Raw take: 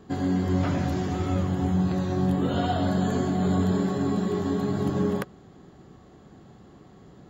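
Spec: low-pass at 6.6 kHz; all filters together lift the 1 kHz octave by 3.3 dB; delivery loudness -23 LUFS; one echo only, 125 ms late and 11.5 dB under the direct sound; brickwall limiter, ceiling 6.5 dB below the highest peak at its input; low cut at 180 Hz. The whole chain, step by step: high-pass 180 Hz; low-pass 6.6 kHz; peaking EQ 1 kHz +5 dB; peak limiter -20.5 dBFS; delay 125 ms -11.5 dB; trim +6 dB

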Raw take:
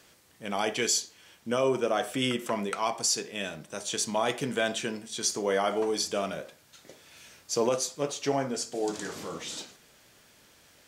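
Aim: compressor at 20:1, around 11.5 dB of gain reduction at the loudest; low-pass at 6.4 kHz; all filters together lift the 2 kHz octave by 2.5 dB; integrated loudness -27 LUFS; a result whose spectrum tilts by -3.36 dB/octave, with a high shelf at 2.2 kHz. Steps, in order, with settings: low-pass 6.4 kHz; peaking EQ 2 kHz +8 dB; treble shelf 2.2 kHz -8.5 dB; compression 20:1, threshold -33 dBFS; trim +12 dB

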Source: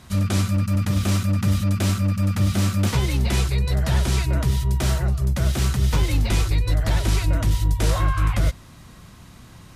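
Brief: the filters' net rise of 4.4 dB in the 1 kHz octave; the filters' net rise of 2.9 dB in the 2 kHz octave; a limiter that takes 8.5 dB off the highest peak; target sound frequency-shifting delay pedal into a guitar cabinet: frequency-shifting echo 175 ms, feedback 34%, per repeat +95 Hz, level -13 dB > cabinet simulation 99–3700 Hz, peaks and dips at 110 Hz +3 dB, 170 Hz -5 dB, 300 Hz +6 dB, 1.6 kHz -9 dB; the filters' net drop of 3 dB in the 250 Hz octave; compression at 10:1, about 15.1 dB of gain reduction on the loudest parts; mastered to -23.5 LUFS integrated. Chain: peaking EQ 250 Hz -5 dB; peaking EQ 1 kHz +5 dB; peaking EQ 2 kHz +6 dB; compression 10:1, threshold -31 dBFS; peak limiter -29.5 dBFS; frequency-shifting echo 175 ms, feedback 34%, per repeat +95 Hz, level -13 dB; cabinet simulation 99–3700 Hz, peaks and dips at 110 Hz +3 dB, 170 Hz -5 dB, 300 Hz +6 dB, 1.6 kHz -9 dB; trim +17.5 dB

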